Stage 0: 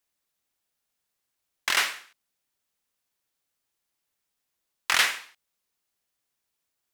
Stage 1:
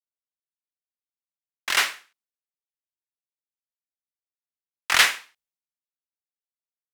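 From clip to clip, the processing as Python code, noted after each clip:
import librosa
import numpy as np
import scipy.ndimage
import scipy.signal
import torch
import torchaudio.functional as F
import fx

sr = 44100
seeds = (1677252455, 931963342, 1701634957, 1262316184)

y = fx.band_widen(x, sr, depth_pct=100)
y = F.gain(torch.from_numpy(y), -1.0).numpy()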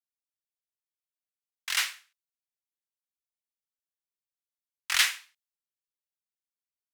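y = fx.tone_stack(x, sr, knobs='10-0-10')
y = F.gain(torch.from_numpy(y), -3.0).numpy()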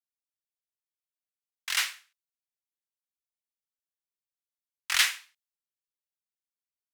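y = x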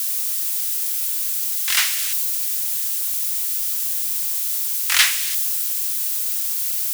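y = x + 0.5 * 10.0 ** (-22.5 / 20.0) * np.diff(np.sign(x), prepend=np.sign(x[:1]))
y = F.gain(torch.from_numpy(y), 7.0).numpy()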